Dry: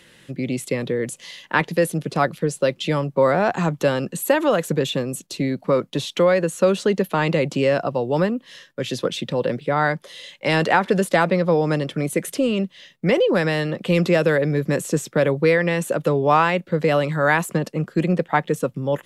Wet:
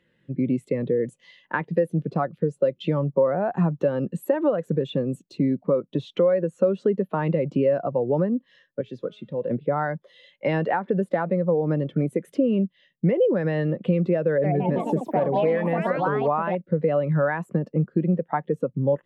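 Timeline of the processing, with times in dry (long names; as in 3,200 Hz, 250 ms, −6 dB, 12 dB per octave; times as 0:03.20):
0:08.81–0:09.51: tuned comb filter 210 Hz, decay 0.79 s
0:14.28–0:16.94: delay with pitch and tempo change per echo 160 ms, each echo +4 semitones, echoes 3
whole clip: high-shelf EQ 3,700 Hz −11.5 dB; downward compressor 6 to 1, threshold −22 dBFS; every bin expanded away from the loudest bin 1.5 to 1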